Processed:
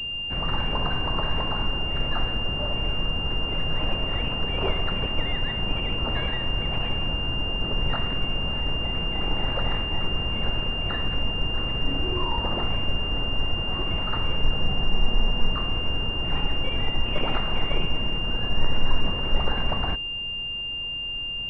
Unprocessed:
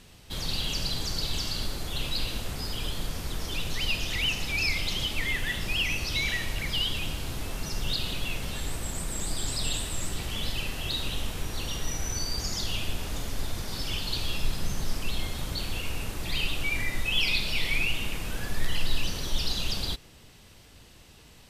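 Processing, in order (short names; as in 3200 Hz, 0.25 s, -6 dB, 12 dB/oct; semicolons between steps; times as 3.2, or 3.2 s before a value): added noise brown -47 dBFS; spectral freeze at 14.91, 0.62 s; pulse-width modulation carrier 2800 Hz; gain +5 dB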